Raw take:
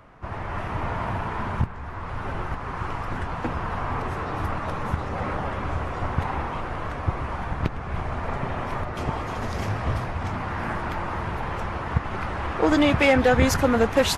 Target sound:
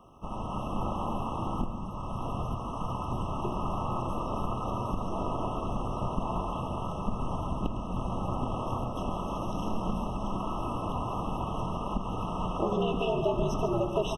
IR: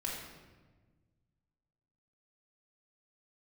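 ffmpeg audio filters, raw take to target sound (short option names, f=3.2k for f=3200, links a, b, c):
-filter_complex "[0:a]aemphasis=mode=production:type=75kf,acrossover=split=4000[a][b];[b]acompressor=threshold=-49dB:ratio=4:attack=1:release=60[c];[a][c]amix=inputs=2:normalize=0,equalizer=f=3.6k:t=o:w=0.22:g=-13.5,acompressor=threshold=-22dB:ratio=3,aeval=exprs='val(0)*sin(2*PI*110*n/s)':c=same,aecho=1:1:139:0.266,asplit=2[d][e];[1:a]atrim=start_sample=2205,lowpass=7.9k[f];[e][f]afir=irnorm=-1:irlink=0,volume=-6dB[g];[d][g]amix=inputs=2:normalize=0,afftfilt=real='re*eq(mod(floor(b*sr/1024/1300),2),0)':imag='im*eq(mod(floor(b*sr/1024/1300),2),0)':win_size=1024:overlap=0.75,volume=-4dB"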